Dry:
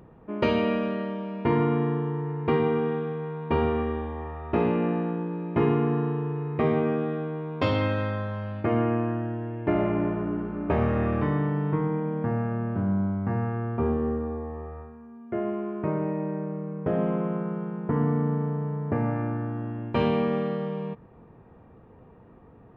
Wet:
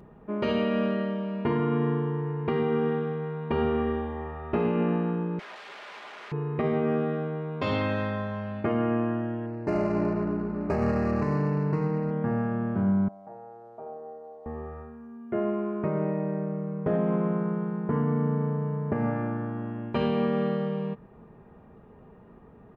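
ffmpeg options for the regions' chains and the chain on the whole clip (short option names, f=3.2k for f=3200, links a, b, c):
-filter_complex "[0:a]asettb=1/sr,asplit=3[a][b][c];[a]atrim=end=5.394[d];[b]atrim=start=5.39:end=6.32,asetpts=PTS-STARTPTS,afade=t=in:d=0.004:c=qsin,afade=t=out:st=0.926:d=0.004:c=qsin,acompressor=threshold=-28dB:ratio=6:attack=3.2:release=140:knee=1:detection=peak,aeval=exprs='(mod(66.8*val(0)+1,2)-1)/66.8':c=same,highpass=450,lowpass=2.7k[e];[c]atrim=start=6.316[f];[d][e]acrossfade=d=0.004:c1=hsin:c2=qsin[g];[g][f]acrossfade=d=0.004:c1=qsin:c2=hsin,asettb=1/sr,asplit=3[h][i][j];[h]atrim=end=9.464[k];[i]atrim=start=9.46:end=12.11,asetpts=PTS-STARTPTS,afade=t=in:d=0.004:c=qsin,afade=t=out:st=2.646:d=0.004:c=qsin,adynamicsmooth=sensitivity=5.5:basefreq=990,asuperstop=centerf=3400:order=8:qfactor=2.8[l];[j]atrim=start=12.106[m];[k][l]acrossfade=d=0.004:c1=hsin:c2=qsin[n];[n][m]acrossfade=d=0.004:c1=qsin:c2=hsin,asettb=1/sr,asplit=3[o][p][q];[o]atrim=end=13.084[r];[p]atrim=start=13.08:end=14.46,asetpts=PTS-STARTPTS,afade=t=in:d=0.004:c=qsin,afade=t=out:st=1.376:d=0.004:c=qsin,aecho=1:1:6.4:0.56,atrim=end_sample=60858,acrusher=bits=9:dc=4:mix=0:aa=0.000001,bandpass=f=670:t=q:w=6.9[s];[q]atrim=start=14.456[t];[r][s]acrossfade=d=0.004:c1=hsin:c2=qsin[u];[u][t]acrossfade=d=0.004:c1=qsin:c2=hsin,aecho=1:1:4.9:0.38,alimiter=limit=-17dB:level=0:latency=1:release=115"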